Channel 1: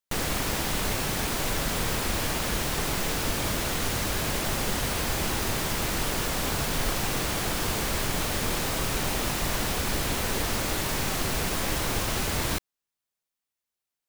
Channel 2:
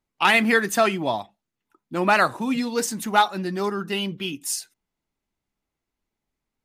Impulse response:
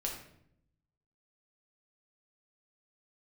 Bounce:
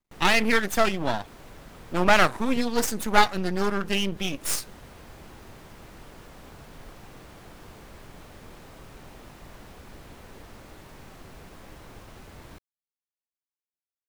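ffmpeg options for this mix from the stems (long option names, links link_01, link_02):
-filter_complex "[0:a]highshelf=frequency=2700:gain=-10.5,volume=-16.5dB[link_01];[1:a]aeval=exprs='max(val(0),0)':channel_layout=same,dynaudnorm=framelen=260:gausssize=11:maxgain=4.5dB,volume=0.5dB,asplit=2[link_02][link_03];[link_03]apad=whole_len=621204[link_04];[link_01][link_04]sidechaincompress=threshold=-34dB:ratio=8:attack=27:release=109[link_05];[link_05][link_02]amix=inputs=2:normalize=0"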